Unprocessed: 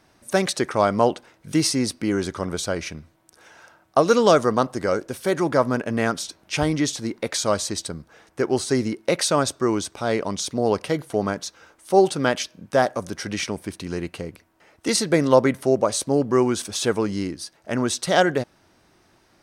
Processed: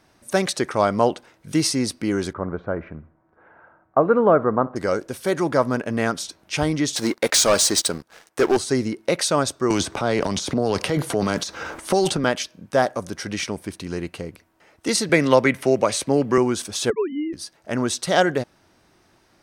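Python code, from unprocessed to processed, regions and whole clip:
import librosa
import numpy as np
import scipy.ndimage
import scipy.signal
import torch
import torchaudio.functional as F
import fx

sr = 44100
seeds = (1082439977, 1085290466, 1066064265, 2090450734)

y = fx.chain(x, sr, fx.lowpass(hz=1600.0, slope=24),
    fx.echo_feedback(ms=63, feedback_pct=46, wet_db=-22), at=(2.33, 4.76))
y = fx.chain(y, sr, fx.highpass(hz=430.0, slope=6),
    fx.high_shelf(hz=8200.0, db=3.5),
    fx.leveller(passes=3), at=(6.96, 8.57))
y = fx.chain(y, sr, fx.transient(attack_db=-4, sustain_db=10),
    fx.high_shelf(hz=8900.0, db=-4.5),
    fx.band_squash(depth_pct=100), at=(9.7, 12.24))
y = fx.chain(y, sr, fx.peak_eq(hz=2300.0, db=9.5, octaves=0.97),
    fx.band_squash(depth_pct=40), at=(15.09, 16.38))
y = fx.chain(y, sr, fx.sine_speech(),
    fx.peak_eq(hz=1300.0, db=-9.5, octaves=0.36), at=(16.9, 17.33))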